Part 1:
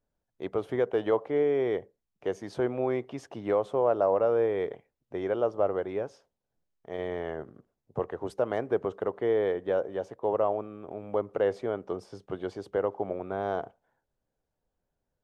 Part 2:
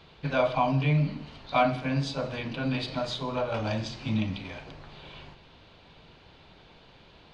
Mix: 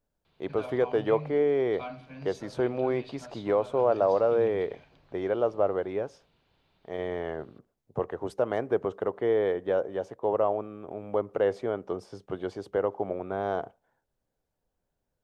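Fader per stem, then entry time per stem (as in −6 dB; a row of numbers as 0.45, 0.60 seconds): +1.0, −16.0 decibels; 0.00, 0.25 seconds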